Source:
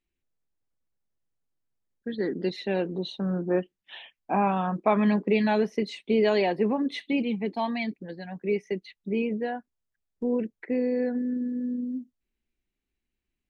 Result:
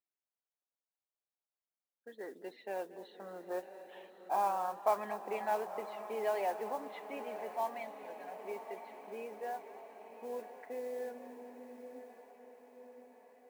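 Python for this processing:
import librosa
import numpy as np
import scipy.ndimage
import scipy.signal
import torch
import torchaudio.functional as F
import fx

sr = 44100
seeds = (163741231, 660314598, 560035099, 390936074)

p1 = fx.ladder_bandpass(x, sr, hz=930.0, resonance_pct=30)
p2 = fx.mod_noise(p1, sr, seeds[0], snr_db=23)
p3 = p2 + fx.echo_diffused(p2, sr, ms=1036, feedback_pct=60, wet_db=-11, dry=0)
p4 = fx.echo_warbled(p3, sr, ms=230, feedback_pct=60, rate_hz=2.8, cents=118, wet_db=-17.0)
y = F.gain(torch.from_numpy(p4), 3.0).numpy()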